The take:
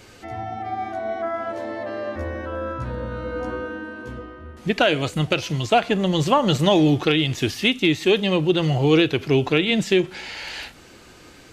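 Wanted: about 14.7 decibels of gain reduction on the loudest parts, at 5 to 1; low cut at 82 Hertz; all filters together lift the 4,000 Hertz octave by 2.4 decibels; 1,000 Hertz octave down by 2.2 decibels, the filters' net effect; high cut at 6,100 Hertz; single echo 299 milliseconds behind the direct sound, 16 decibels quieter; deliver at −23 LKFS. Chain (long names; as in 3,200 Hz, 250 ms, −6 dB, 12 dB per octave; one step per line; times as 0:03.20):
high-pass filter 82 Hz
low-pass filter 6,100 Hz
parametric band 1,000 Hz −3.5 dB
parametric band 4,000 Hz +4 dB
downward compressor 5 to 1, threshold −30 dBFS
single-tap delay 299 ms −16 dB
level +10 dB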